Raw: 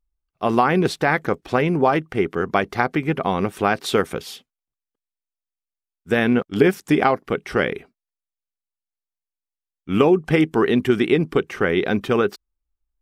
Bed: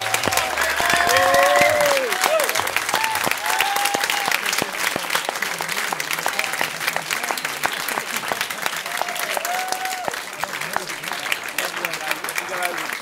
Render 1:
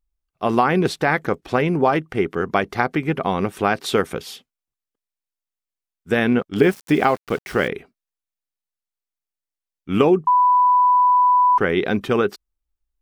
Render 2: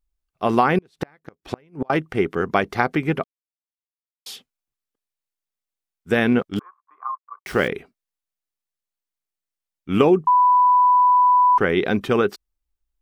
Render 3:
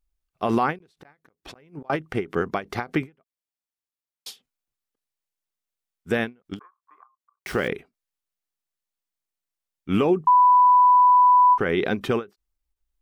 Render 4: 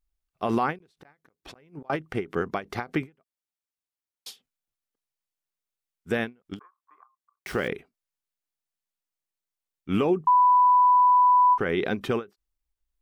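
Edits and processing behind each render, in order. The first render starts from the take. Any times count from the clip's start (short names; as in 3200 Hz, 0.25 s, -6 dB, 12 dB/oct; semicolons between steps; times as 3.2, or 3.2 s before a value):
6.58–7.68 sample gate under -34.5 dBFS; 10.27–11.58 bleep 993 Hz -11.5 dBFS
0.78–1.9 flipped gate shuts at -12 dBFS, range -35 dB; 3.24–4.26 mute; 6.59–7.46 Butterworth band-pass 1100 Hz, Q 7.2
limiter -11.5 dBFS, peak gain reduction 9.5 dB; ending taper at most 280 dB/s
gain -3 dB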